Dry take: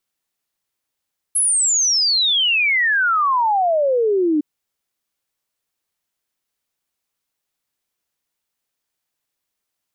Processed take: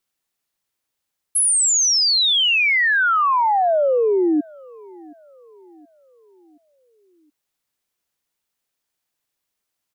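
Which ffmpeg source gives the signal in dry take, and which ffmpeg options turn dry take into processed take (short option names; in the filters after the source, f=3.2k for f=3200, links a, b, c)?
-f lavfi -i "aevalsrc='0.2*clip(min(t,3.06-t)/0.01,0,1)*sin(2*PI*11000*3.06/log(290/11000)*(exp(log(290/11000)*t/3.06)-1))':d=3.06:s=44100"
-filter_complex "[0:a]asplit=2[a][b];[b]adelay=723,lowpass=f=840:p=1,volume=-22.5dB,asplit=2[c][d];[d]adelay=723,lowpass=f=840:p=1,volume=0.54,asplit=2[e][f];[f]adelay=723,lowpass=f=840:p=1,volume=0.54,asplit=2[g][h];[h]adelay=723,lowpass=f=840:p=1,volume=0.54[i];[a][c][e][g][i]amix=inputs=5:normalize=0"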